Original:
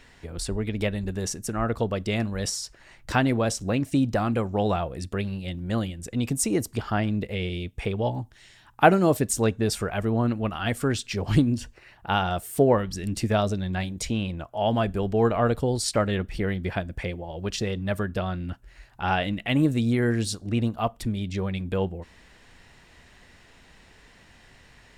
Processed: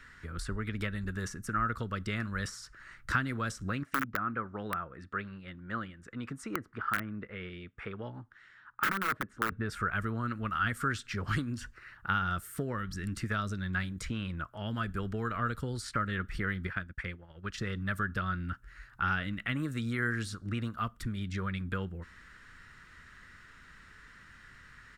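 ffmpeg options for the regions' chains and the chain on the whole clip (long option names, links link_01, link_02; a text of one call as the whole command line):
ffmpeg -i in.wav -filter_complex "[0:a]asettb=1/sr,asplit=3[link_01][link_02][link_03];[link_01]atrim=end=3.834[link_04];[link_02]atrim=start=3.83:end=9.52,asetpts=PTS-STARTPTS,afade=type=in:duration=0.004:curve=qsin,afade=type=out:start_time=5.686:duration=0.004:curve=qsin,lowpass=1500,aeval=exprs='(mod(5.31*val(0)+1,2)-1)/5.31':channel_layout=same,aemphasis=mode=production:type=riaa[link_05];[link_03]atrim=start=9.516[link_06];[link_04][link_05]acrossfade=duration=0.004:curve1=hsin:curve2=qsin[link_07];[link_07][link_06]acrossfade=duration=0.004:curve1=qsin:curve2=hsin,asettb=1/sr,asplit=3[link_08][link_09][link_10];[link_08]atrim=end=16.674[link_11];[link_09]atrim=start=16.67:end=17.58,asetpts=PTS-STARTPTS,afade=type=in:duration=0.004:curve=qsin,afade=type=out:start_time=0.906:duration=0.004:curve=qsin,agate=range=-33dB:threshold=-28dB:ratio=3:release=100:detection=peak,equalizer=frequency=2100:width_type=o:width=1.5:gain=4,acompressor=threshold=-31dB:ratio=2:attack=3.2:release=140:knee=1:detection=peak[link_12];[link_10]atrim=start=17.576[link_13];[link_11][link_12]acrossfade=duration=0.004:curve1=hsin:curve2=qsin[link_14];[link_14][link_13]acrossfade=duration=0.004:curve1=qsin:curve2=hsin,equalizer=frequency=660:width_type=o:width=0.77:gain=2,acrossover=split=430|2900[link_15][link_16][link_17];[link_15]acompressor=threshold=-29dB:ratio=4[link_18];[link_16]acompressor=threshold=-31dB:ratio=4[link_19];[link_17]acompressor=threshold=-39dB:ratio=4[link_20];[link_18][link_19][link_20]amix=inputs=3:normalize=0,firequalizer=gain_entry='entry(140,0);entry(740,-15);entry(1300,12);entry(2500,-3)':delay=0.05:min_phase=1,volume=-3dB" out.wav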